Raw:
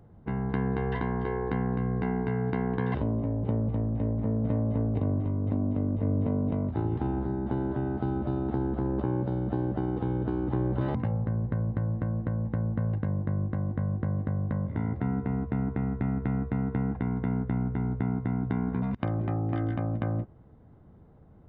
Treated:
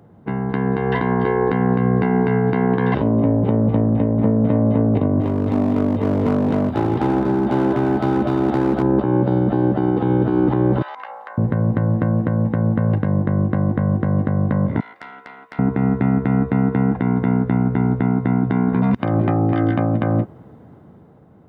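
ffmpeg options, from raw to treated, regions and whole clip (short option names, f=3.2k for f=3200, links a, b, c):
-filter_complex "[0:a]asettb=1/sr,asplit=3[a][b][c];[a]atrim=end=5.214[d];[b]atrim=start=5.21:end=8.83,asetpts=PTS-STARTPTS,afade=t=in:d=0.004:c=qsin,afade=t=out:st=3.616:d=0.004:c=qsin,bass=f=250:g=-3,treble=f=4k:g=8,asoftclip=type=hard:threshold=-28dB[e];[c]atrim=start=8.826[f];[d][e]acrossfade=d=0.004:c1=hsin:c2=qsin[g];[g][f]acrossfade=d=0.004:c1=qsin:c2=hsin,asettb=1/sr,asplit=3[h][i][j];[h]atrim=end=10.824[k];[i]atrim=start=10.82:end=11.38,asetpts=PTS-STARTPTS,afade=t=in:d=0.004:c=qsin,afade=t=out:st=0.556:d=0.004:c=qsin,highpass=f=820:w=0.5412,highpass=f=820:w=1.3066,acompressor=threshold=-44dB:ratio=6:attack=3.2:release=140:knee=1:detection=peak[l];[j]atrim=start=11.376[m];[k][l]acrossfade=d=0.004:c1=hsin:c2=qsin[n];[n][m]acrossfade=d=0.004:c1=qsin:c2=hsin,asettb=1/sr,asplit=3[o][p][q];[o]atrim=end=14.804[r];[p]atrim=start=14.8:end=15.59,asetpts=PTS-STARTPTS,afade=t=in:d=0.004:c=qsin,afade=t=out:st=0.786:d=0.004:c=qsin,highpass=1.5k,aeval=exprs='(tanh(100*val(0)+0.7)-tanh(0.7))/100':c=same[s];[q]atrim=start=15.586[t];[r][s]acrossfade=d=0.004:c1=hsin:c2=qsin[u];[u][t]acrossfade=d=0.004:c1=qsin:c2=hsin,highpass=140,dynaudnorm=f=150:g=13:m=7dB,alimiter=limit=-17dB:level=0:latency=1:release=148,volume=9dB"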